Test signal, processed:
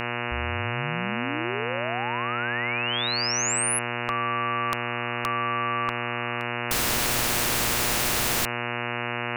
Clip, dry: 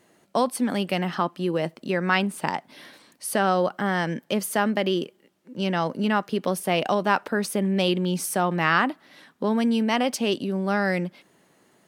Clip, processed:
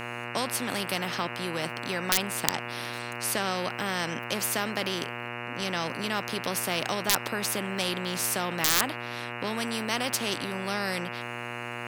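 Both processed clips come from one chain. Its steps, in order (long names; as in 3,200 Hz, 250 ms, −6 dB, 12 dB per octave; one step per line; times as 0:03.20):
wrap-around overflow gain 8 dB
hum with harmonics 120 Hz, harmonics 24, −38 dBFS −2 dB per octave
every bin compressed towards the loudest bin 2 to 1
level +6 dB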